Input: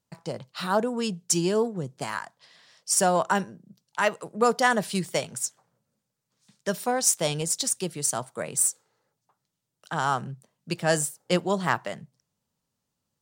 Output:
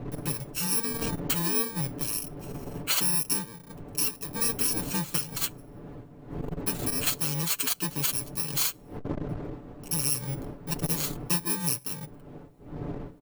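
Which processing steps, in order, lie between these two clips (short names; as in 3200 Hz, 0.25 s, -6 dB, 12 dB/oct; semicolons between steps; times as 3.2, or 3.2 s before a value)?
FFT order left unsorted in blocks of 64 samples; wind noise 320 Hz -38 dBFS; compressor 2.5:1, threshold -33 dBFS, peak gain reduction 11.5 dB; comb 6.9 ms, depth 58%; core saturation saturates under 420 Hz; gain +4.5 dB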